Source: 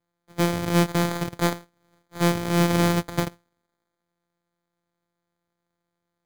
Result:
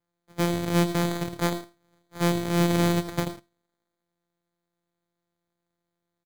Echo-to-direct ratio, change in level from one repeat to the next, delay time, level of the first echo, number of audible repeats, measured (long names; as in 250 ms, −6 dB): −10.5 dB, repeats not evenly spaced, 81 ms, −14.0 dB, 2